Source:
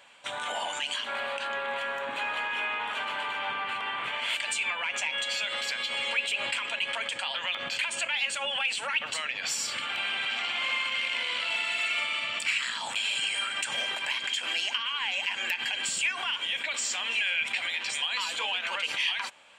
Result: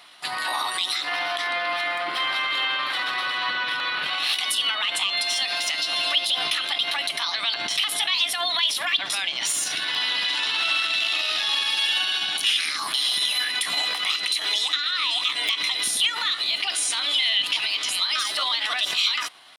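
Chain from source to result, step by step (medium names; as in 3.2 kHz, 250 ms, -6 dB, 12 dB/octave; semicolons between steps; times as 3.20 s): pitch shift +4 st; trim +6.5 dB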